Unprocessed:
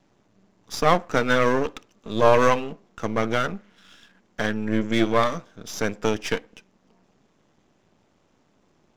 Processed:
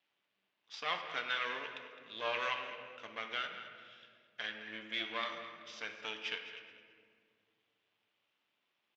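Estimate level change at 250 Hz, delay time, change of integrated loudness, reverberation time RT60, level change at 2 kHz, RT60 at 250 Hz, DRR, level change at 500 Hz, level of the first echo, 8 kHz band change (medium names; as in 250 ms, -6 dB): -29.0 dB, 212 ms, -16.5 dB, 2.1 s, -10.5 dB, 2.9 s, 4.5 dB, -23.5 dB, -14.0 dB, -22.0 dB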